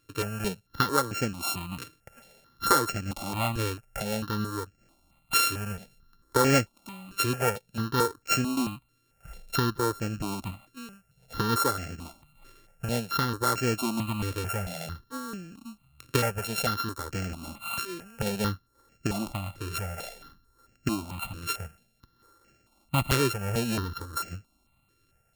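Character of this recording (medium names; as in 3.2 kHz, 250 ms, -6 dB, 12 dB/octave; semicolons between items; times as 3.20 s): a buzz of ramps at a fixed pitch in blocks of 32 samples; notches that jump at a steady rate 4.5 Hz 200–3700 Hz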